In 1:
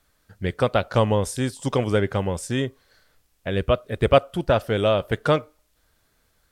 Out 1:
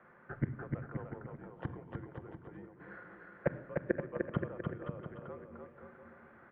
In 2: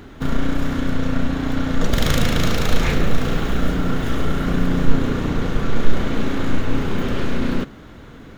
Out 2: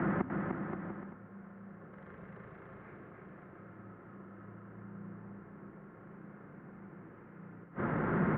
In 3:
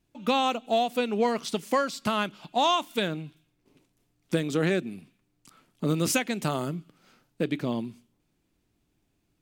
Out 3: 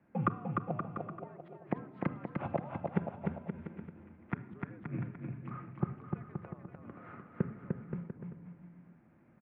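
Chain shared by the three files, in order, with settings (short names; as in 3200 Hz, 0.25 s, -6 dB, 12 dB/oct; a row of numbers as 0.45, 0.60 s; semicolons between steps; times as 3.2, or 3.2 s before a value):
notches 50/100/150/200/250/300/350 Hz; in parallel at -1.5 dB: compressor 5:1, threshold -29 dBFS; on the sum: flipped gate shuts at -20 dBFS, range -36 dB; mistuned SSB -69 Hz 190–2000 Hz; on a send: bouncing-ball echo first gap 0.3 s, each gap 0.75×, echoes 5; on the sum: shoebox room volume 3100 m³, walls furnished, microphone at 0.87 m; gain +5.5 dB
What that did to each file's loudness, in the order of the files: -18.5, -20.5, -12.5 LU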